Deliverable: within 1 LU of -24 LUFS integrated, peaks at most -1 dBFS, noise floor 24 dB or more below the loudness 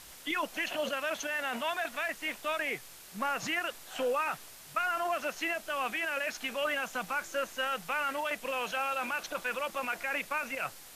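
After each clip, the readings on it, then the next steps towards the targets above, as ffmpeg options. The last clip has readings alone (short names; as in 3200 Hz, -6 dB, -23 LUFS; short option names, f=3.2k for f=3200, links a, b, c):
noise floor -51 dBFS; noise floor target -57 dBFS; loudness -33.0 LUFS; peak -20.5 dBFS; loudness target -24.0 LUFS
-> -af "afftdn=nr=6:nf=-51"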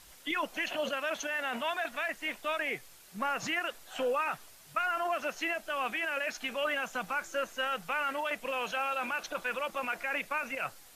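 noise floor -55 dBFS; noise floor target -58 dBFS
-> -af "afftdn=nr=6:nf=-55"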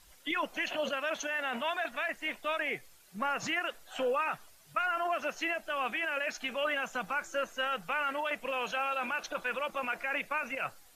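noise floor -59 dBFS; loudness -33.5 LUFS; peak -20.5 dBFS; loudness target -24.0 LUFS
-> -af "volume=9.5dB"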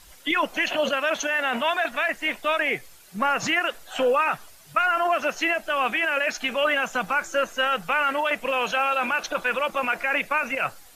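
loudness -24.0 LUFS; peak -11.0 dBFS; noise floor -49 dBFS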